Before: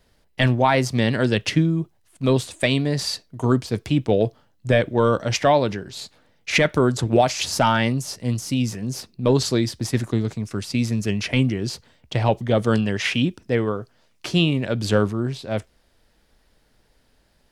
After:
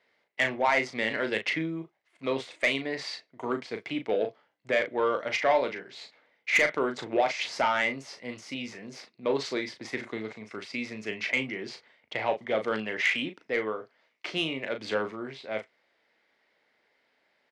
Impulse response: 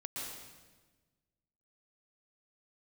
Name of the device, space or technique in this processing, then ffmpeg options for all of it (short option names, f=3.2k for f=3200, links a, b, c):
intercom: -filter_complex "[0:a]highpass=410,lowpass=3.6k,equalizer=f=2.1k:t=o:w=0.29:g=11.5,asoftclip=type=tanh:threshold=-10dB,asplit=2[a][b];[b]adelay=37,volume=-7.5dB[c];[a][c]amix=inputs=2:normalize=0,volume=-5.5dB"